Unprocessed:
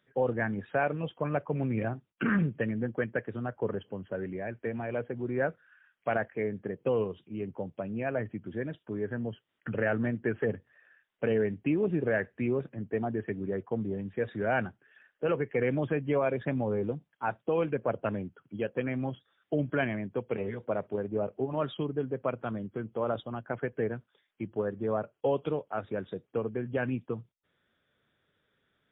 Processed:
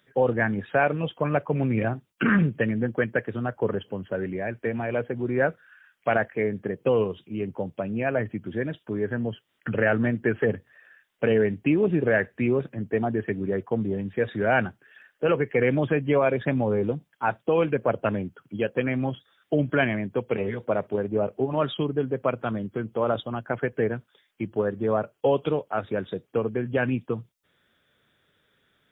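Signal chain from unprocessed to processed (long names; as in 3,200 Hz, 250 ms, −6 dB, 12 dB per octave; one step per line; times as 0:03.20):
high-shelf EQ 3,000 Hz +6.5 dB
level +6 dB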